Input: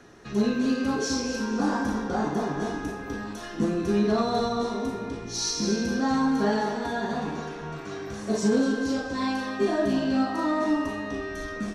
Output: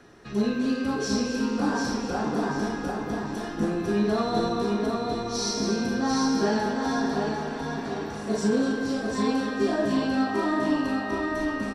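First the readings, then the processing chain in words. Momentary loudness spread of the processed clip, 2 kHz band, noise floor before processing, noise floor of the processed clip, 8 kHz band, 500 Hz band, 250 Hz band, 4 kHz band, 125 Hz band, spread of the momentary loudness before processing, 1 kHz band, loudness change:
7 LU, +1.0 dB, -38 dBFS, -34 dBFS, -1.0 dB, +0.5 dB, +0.5 dB, +0.5 dB, +0.5 dB, 10 LU, +0.5 dB, +0.5 dB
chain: notch 6500 Hz, Q 8.3; feedback echo 0.744 s, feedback 34%, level -4 dB; gain -1 dB

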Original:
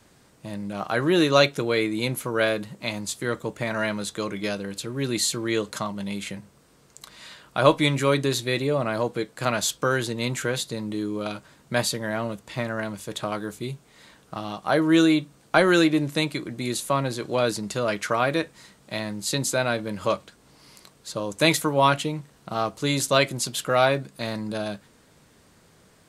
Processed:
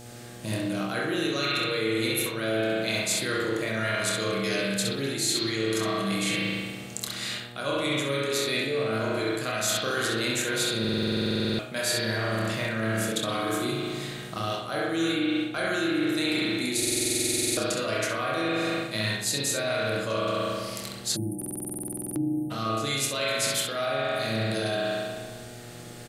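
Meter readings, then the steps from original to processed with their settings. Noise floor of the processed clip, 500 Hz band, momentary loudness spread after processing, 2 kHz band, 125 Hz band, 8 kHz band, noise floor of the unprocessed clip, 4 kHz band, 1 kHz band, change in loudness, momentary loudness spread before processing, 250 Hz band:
-41 dBFS, -4.0 dB, 7 LU, -1.0 dB, -3.0 dB, +2.5 dB, -57 dBFS, +1.0 dB, -5.5 dB, -2.5 dB, 14 LU, -3.0 dB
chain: high shelf 3000 Hz +11 dB; on a send: early reflections 27 ms -7.5 dB, 66 ms -7.5 dB; on the sum: spring tank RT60 1.4 s, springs 36 ms, chirp 30 ms, DRR -4.5 dB; spectral delete 21.16–22.51, 380–8600 Hz; reverse; compressor 12:1, threshold -26 dBFS, peak gain reduction 20.5 dB; reverse; bell 870 Hz -12 dB 0.31 oct; de-hum 46.07 Hz, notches 5; buzz 120 Hz, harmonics 7, -48 dBFS -4 dB/oct; stuck buffer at 10.8/16.78/21.37, samples 2048, times 16; gain +2.5 dB

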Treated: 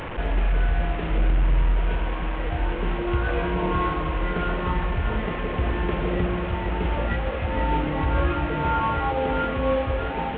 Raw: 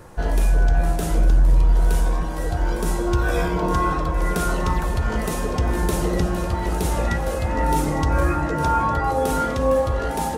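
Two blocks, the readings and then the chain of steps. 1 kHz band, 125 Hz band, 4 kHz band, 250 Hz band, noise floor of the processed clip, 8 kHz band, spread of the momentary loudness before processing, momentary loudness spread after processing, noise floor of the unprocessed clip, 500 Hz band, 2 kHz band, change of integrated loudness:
-3.0 dB, -3.5 dB, -1.5 dB, -2.5 dB, -28 dBFS, under -40 dB, 5 LU, 4 LU, -25 dBFS, -3.0 dB, -0.5 dB, -3.5 dB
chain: delta modulation 16 kbps, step -23 dBFS; on a send: echo with dull and thin repeats by turns 0.129 s, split 890 Hz, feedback 51%, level -11 dB; on the sum: gain -3.5 dB

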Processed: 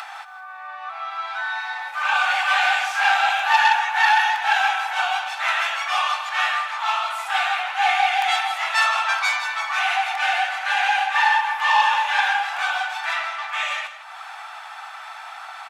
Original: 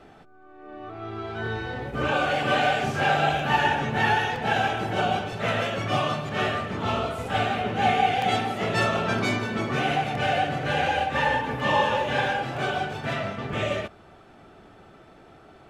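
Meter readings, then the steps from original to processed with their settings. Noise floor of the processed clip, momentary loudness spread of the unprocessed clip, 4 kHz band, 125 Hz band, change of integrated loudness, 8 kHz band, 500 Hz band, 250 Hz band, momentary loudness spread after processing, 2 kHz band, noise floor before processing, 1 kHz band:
-38 dBFS, 9 LU, +6.0 dB, under -40 dB, +4.5 dB, +7.5 dB, -11.0 dB, under -35 dB, 18 LU, +7.5 dB, -51 dBFS, +5.0 dB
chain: upward compressor, threshold -26 dBFS; elliptic high-pass 830 Hz, stop band 50 dB; notch 3000 Hz, Q 19; echo 0.162 s -12.5 dB; core saturation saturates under 1700 Hz; gain +8 dB

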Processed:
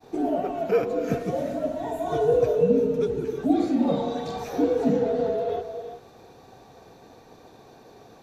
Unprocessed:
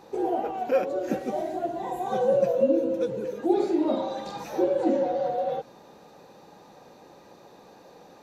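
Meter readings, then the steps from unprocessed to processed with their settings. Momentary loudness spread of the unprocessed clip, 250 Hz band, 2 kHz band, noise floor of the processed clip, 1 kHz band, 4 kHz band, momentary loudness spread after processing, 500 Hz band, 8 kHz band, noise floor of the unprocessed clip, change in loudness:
8 LU, +3.0 dB, +1.5 dB, -51 dBFS, -1.5 dB, +2.0 dB, 9 LU, +1.5 dB, n/a, -52 dBFS, +1.5 dB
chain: frequency shift -67 Hz; expander -49 dBFS; non-linear reverb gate 0.41 s rising, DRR 9.5 dB; gain +1.5 dB

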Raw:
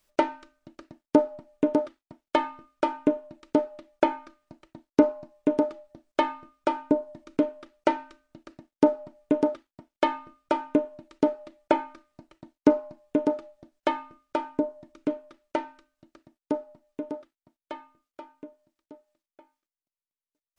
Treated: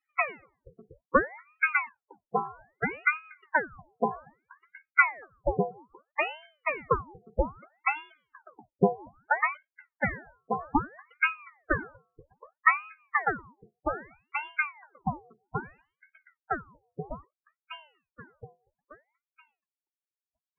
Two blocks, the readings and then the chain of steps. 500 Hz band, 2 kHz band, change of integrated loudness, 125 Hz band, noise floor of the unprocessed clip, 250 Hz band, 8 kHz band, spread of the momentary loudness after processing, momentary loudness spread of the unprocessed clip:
-7.0 dB, +12.5 dB, -2.0 dB, +7.0 dB, under -85 dBFS, -11.5 dB, n/a, 17 LU, 16 LU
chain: loudest bins only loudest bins 8; notch comb 700 Hz; ring modulator with a swept carrier 1000 Hz, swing 90%, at 0.62 Hz; gain +1 dB

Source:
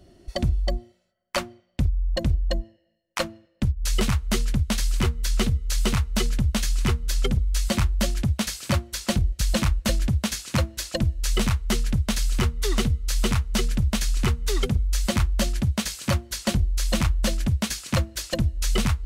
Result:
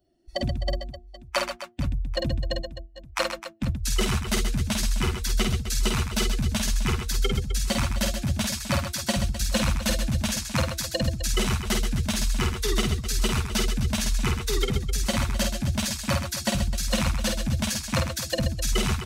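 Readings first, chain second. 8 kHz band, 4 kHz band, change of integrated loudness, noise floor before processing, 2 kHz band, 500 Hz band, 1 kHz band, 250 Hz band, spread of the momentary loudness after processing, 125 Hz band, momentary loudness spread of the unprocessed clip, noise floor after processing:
+1.5 dB, +1.5 dB, -1.0 dB, -67 dBFS, +1.5 dB, +0.5 dB, +1.0 dB, -1.5 dB, 5 LU, -3.0 dB, 4 LU, -45 dBFS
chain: per-bin expansion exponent 1.5; low shelf 250 Hz -7 dB; reverse bouncing-ball echo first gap 50 ms, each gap 1.6×, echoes 5; gain +2.5 dB

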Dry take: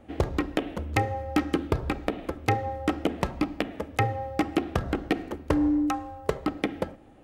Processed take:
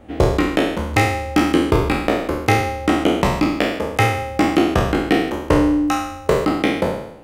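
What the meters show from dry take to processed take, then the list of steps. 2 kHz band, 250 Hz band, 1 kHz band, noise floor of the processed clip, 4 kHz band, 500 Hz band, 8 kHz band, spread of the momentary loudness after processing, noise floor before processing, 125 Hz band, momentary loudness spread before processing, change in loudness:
+12.5 dB, +9.5 dB, +10.0 dB, -34 dBFS, +13.0 dB, +11.5 dB, +13.5 dB, 4 LU, -48 dBFS, +9.5 dB, 5 LU, +10.5 dB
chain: spectral trails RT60 0.79 s; gain +6.5 dB

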